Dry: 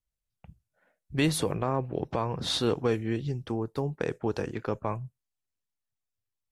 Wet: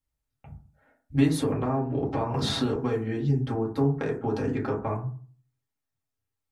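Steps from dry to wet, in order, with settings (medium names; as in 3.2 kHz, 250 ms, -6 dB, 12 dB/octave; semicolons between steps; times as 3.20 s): compression, threshold -29 dBFS, peak gain reduction 8.5 dB; reverberation RT60 0.45 s, pre-delay 4 ms, DRR -4.5 dB; 2.34–2.76 s: three bands compressed up and down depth 70%; trim -1 dB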